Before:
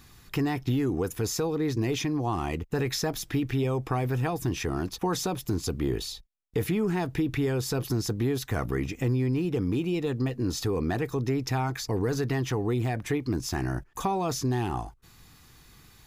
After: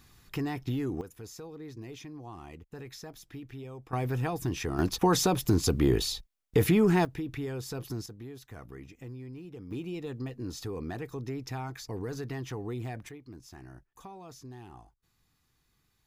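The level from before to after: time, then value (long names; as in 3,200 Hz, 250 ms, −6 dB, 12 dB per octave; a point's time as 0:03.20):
−5.5 dB
from 0:01.01 −16 dB
from 0:03.93 −3 dB
from 0:04.79 +4 dB
from 0:07.05 −8.5 dB
from 0:08.06 −17 dB
from 0:09.71 −9 dB
from 0:13.09 −19 dB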